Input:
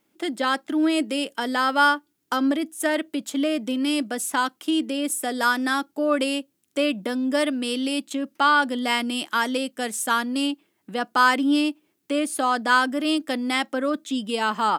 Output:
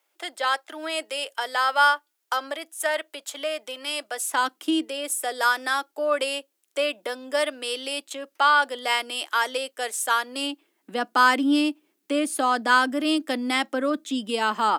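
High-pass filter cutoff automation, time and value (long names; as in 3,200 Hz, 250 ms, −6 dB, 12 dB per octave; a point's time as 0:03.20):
high-pass filter 24 dB per octave
0:04.14 540 Hz
0:04.69 200 Hz
0:04.88 430 Hz
0:10.22 430 Hz
0:10.96 220 Hz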